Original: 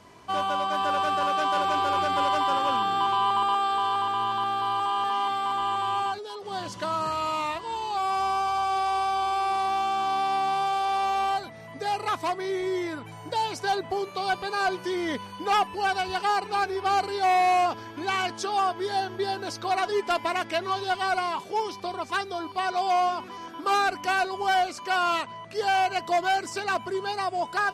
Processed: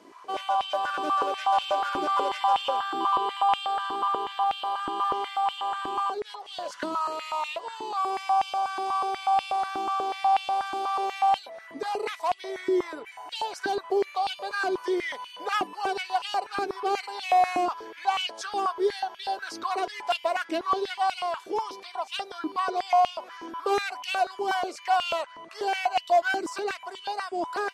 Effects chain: dynamic EQ 1700 Hz, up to -5 dB, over -37 dBFS, Q 0.82; stepped high-pass 8.2 Hz 310–2800 Hz; gain -3.5 dB

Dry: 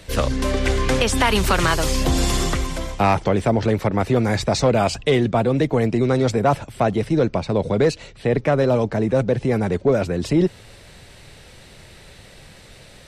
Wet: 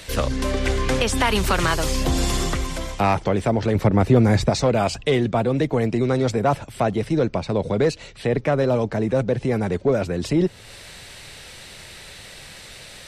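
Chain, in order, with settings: 3.75–4.5 low shelf 450 Hz +7.5 dB; mismatched tape noise reduction encoder only; gain -2 dB

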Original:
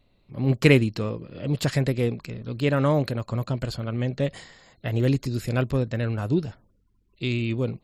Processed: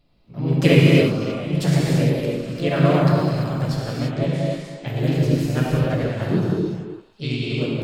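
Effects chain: delay with a stepping band-pass 0.142 s, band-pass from 150 Hz, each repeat 1.4 oct, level -6.5 dB; non-linear reverb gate 0.37 s flat, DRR -4.5 dB; harmoniser +3 st -2 dB; gain -4 dB

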